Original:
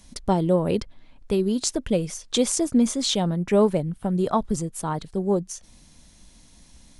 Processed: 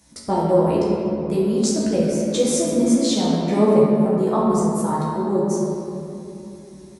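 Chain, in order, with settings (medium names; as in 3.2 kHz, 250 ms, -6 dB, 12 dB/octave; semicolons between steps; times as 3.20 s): high-pass 80 Hz 12 dB/octave; peaking EQ 3.1 kHz -6.5 dB 0.83 oct; hum notches 50/100/150/200 Hz; doubling 14 ms -4 dB; simulated room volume 130 m³, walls hard, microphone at 0.71 m; trim -2.5 dB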